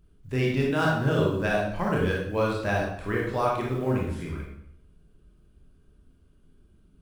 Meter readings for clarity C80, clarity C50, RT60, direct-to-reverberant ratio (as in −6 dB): 5.5 dB, 1.5 dB, 0.70 s, −3.5 dB